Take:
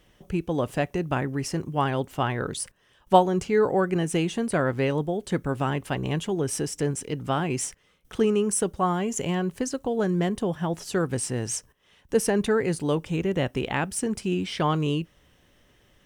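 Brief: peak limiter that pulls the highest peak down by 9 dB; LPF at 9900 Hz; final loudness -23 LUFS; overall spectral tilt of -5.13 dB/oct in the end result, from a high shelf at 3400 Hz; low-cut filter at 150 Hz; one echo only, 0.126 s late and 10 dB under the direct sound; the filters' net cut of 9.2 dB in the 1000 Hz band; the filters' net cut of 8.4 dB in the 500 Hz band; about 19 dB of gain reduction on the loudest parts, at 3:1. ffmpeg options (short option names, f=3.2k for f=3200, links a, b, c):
-af "highpass=150,lowpass=9.9k,equalizer=f=500:t=o:g=-9,equalizer=f=1k:t=o:g=-8,highshelf=f=3.4k:g=-8.5,acompressor=threshold=-46dB:ratio=3,alimiter=level_in=13.5dB:limit=-24dB:level=0:latency=1,volume=-13.5dB,aecho=1:1:126:0.316,volume=24dB"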